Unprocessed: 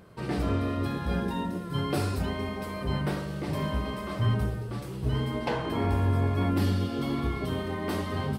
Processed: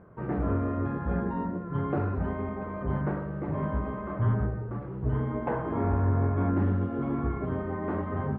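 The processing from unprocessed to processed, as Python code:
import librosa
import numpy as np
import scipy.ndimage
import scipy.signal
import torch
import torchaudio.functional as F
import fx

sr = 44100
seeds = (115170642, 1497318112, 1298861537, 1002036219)

y = scipy.signal.sosfilt(scipy.signal.butter(4, 1600.0, 'lowpass', fs=sr, output='sos'), x)
y = fx.doppler_dist(y, sr, depth_ms=0.14)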